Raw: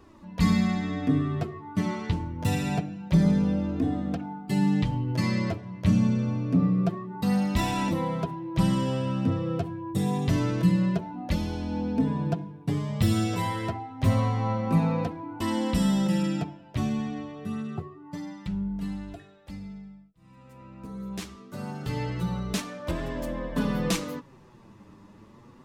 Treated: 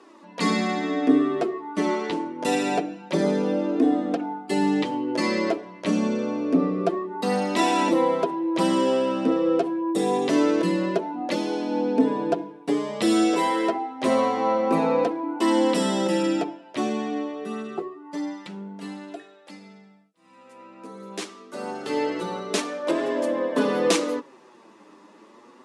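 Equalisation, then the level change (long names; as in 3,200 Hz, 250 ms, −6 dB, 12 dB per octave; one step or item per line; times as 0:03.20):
high-pass filter 290 Hz 24 dB per octave
Butterworth low-pass 11,000 Hz 48 dB per octave
dynamic equaliser 390 Hz, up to +7 dB, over −46 dBFS, Q 0.79
+5.5 dB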